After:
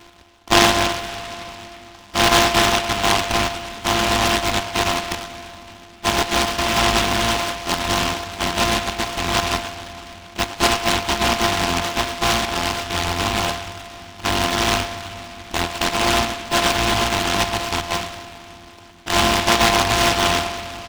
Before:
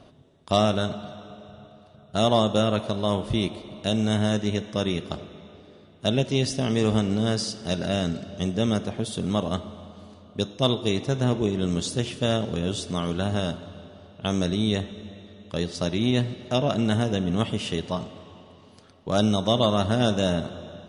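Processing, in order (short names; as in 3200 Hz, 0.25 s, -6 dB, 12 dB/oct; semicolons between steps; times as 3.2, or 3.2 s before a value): sample sorter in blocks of 128 samples; band shelf 1200 Hz +13.5 dB; harmoniser -12 st -9 dB; low shelf 180 Hz +9 dB; fixed phaser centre 510 Hz, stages 6; speakerphone echo 0.11 s, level -14 dB; on a send at -14 dB: reverb RT60 3.6 s, pre-delay 4 ms; on the sum: noise-modulated delay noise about 2000 Hz, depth 0.18 ms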